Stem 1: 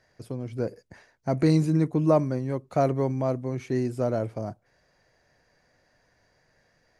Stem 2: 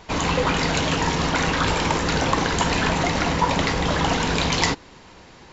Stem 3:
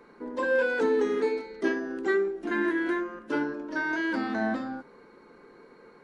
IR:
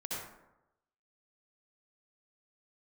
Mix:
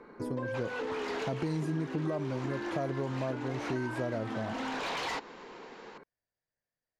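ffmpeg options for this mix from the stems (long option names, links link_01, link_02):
-filter_complex "[0:a]agate=range=-28dB:threshold=-53dB:ratio=16:detection=peak,alimiter=limit=-15.5dB:level=0:latency=1,volume=-1dB,asplit=2[link_01][link_02];[1:a]highpass=560,asoftclip=type=hard:threshold=-25.5dB,adelay=450,volume=-1dB[link_03];[2:a]acompressor=threshold=-29dB:ratio=6,volume=1.5dB[link_04];[link_02]apad=whole_len=263534[link_05];[link_03][link_05]sidechaincompress=threshold=-30dB:ratio=8:attack=25:release=918[link_06];[link_06][link_04]amix=inputs=2:normalize=0,aemphasis=mode=reproduction:type=75fm,acompressor=threshold=-30dB:ratio=6,volume=0dB[link_07];[link_01][link_07]amix=inputs=2:normalize=0,acompressor=threshold=-32dB:ratio=3"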